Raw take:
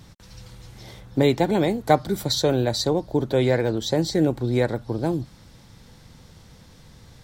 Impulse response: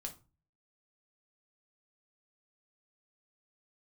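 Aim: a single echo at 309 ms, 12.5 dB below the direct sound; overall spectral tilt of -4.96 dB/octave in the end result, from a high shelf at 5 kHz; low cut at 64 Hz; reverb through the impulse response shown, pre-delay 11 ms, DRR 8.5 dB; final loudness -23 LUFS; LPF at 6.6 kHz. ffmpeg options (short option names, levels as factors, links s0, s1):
-filter_complex "[0:a]highpass=64,lowpass=6600,highshelf=f=5000:g=5,aecho=1:1:309:0.237,asplit=2[s0][s1];[1:a]atrim=start_sample=2205,adelay=11[s2];[s1][s2]afir=irnorm=-1:irlink=0,volume=0.531[s3];[s0][s3]amix=inputs=2:normalize=0,volume=0.891"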